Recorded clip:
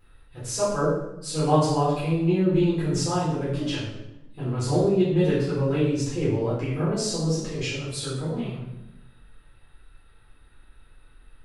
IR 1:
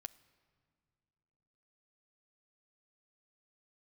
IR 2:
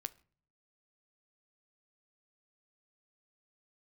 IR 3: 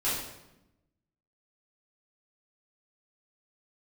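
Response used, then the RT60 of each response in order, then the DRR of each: 3; not exponential, not exponential, 0.90 s; 13.0, 13.0, -10.5 dB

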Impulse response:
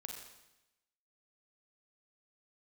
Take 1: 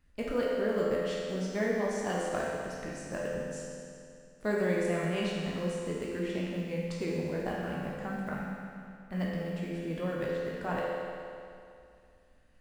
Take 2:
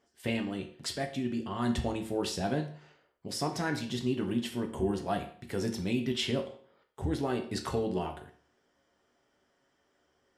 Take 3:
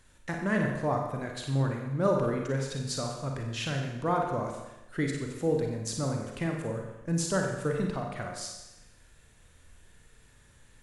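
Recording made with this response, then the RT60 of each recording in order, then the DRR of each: 3; 2.5, 0.50, 0.95 s; -5.0, 3.5, 1.0 dB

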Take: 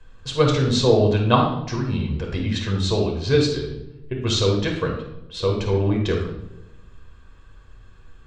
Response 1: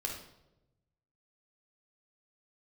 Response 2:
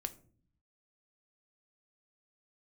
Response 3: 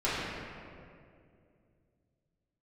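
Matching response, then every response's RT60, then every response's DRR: 1; 0.95, 0.50, 2.4 s; 0.0, 9.0, -12.0 dB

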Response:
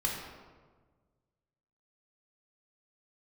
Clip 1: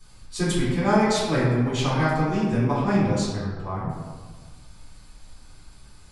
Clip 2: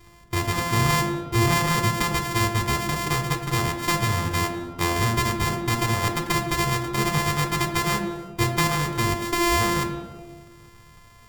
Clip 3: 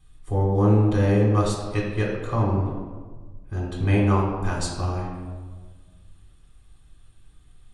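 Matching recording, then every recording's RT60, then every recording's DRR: 3; 1.4, 1.5, 1.4 s; -9.0, 4.5, -2.5 dB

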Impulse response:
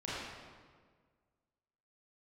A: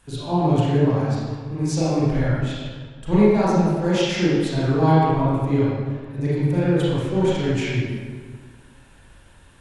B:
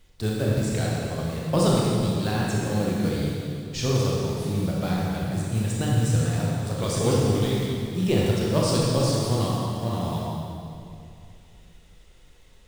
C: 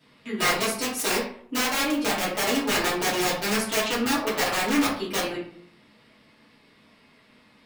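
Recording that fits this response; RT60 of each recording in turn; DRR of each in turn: A; 1.7, 2.6, 0.55 s; -9.5, -4.5, -10.0 dB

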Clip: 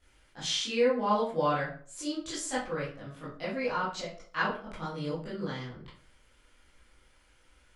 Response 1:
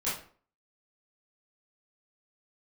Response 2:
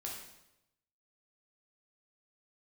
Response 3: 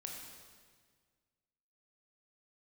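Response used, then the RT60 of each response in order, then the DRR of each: 1; 0.45, 0.90, 1.7 s; -11.5, -3.0, 0.0 dB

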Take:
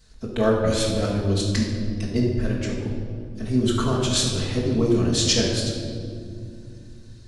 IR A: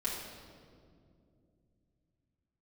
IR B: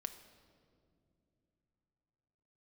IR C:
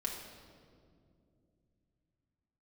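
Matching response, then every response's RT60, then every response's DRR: A; 2.4 s, not exponential, 2.4 s; -8.0, 7.5, -2.0 dB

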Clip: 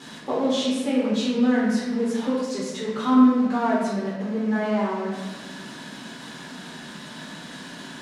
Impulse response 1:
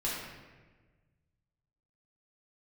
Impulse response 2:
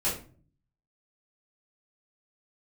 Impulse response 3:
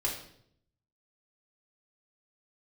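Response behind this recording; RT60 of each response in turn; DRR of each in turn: 1; 1.4, 0.40, 0.70 s; -7.0, -9.5, -3.0 dB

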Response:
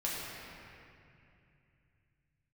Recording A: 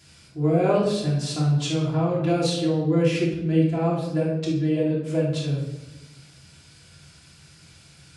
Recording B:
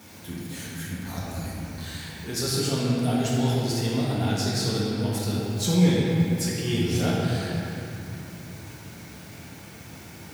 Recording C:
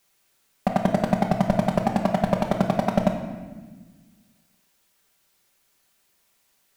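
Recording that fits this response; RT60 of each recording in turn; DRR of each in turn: B; 1.0, 2.6, 1.3 s; -6.5, -7.0, 1.0 dB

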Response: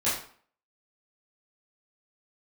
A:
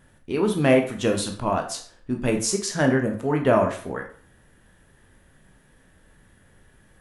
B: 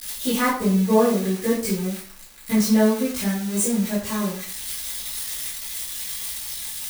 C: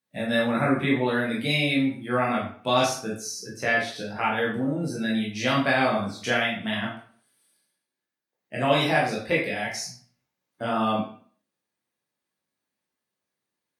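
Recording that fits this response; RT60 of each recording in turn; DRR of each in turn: B; 0.50, 0.50, 0.50 s; 2.5, -11.5, -5.0 dB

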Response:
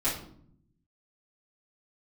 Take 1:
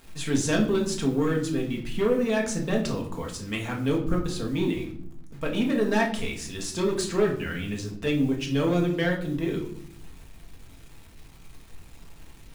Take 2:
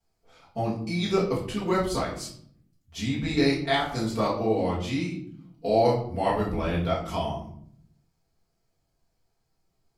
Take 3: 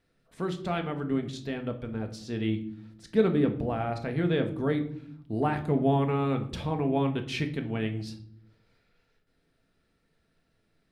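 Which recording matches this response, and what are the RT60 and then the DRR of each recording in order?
2; 0.65, 0.60, 0.65 s; -0.5, -10.0, 4.5 dB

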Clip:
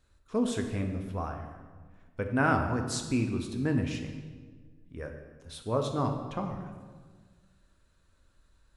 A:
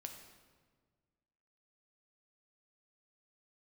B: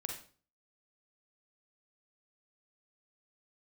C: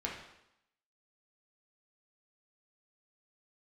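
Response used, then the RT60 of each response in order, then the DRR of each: A; 1.6, 0.40, 0.80 s; 3.5, 1.5, -3.5 dB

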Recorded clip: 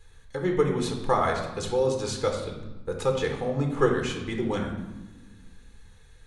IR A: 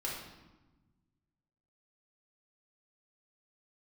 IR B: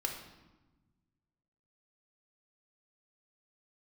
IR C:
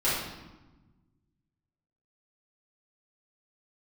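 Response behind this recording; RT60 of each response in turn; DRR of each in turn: B; 1.1, 1.1, 1.1 s; -4.5, 1.5, -11.5 dB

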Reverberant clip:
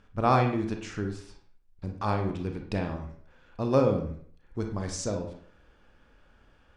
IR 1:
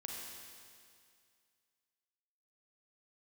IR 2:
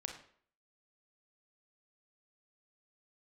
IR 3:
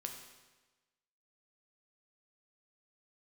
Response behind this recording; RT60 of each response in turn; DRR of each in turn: 2; 2.2, 0.55, 1.2 s; -1.5, 3.5, 3.0 dB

